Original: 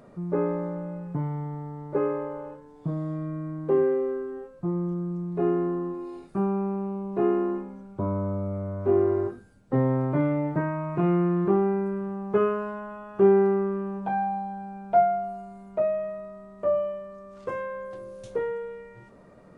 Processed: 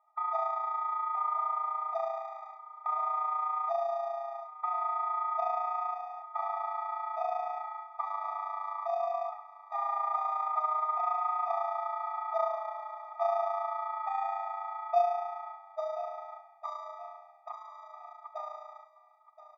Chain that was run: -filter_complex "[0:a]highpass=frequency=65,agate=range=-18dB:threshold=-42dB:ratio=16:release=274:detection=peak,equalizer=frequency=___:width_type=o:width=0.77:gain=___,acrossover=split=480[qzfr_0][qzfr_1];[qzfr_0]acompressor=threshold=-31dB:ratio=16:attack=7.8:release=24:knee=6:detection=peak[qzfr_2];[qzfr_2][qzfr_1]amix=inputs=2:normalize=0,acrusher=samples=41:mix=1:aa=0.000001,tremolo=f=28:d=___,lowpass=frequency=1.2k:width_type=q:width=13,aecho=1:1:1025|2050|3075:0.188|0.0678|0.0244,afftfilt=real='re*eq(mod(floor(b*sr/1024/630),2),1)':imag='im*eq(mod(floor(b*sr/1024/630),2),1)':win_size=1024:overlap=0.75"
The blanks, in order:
180, 11, 0.571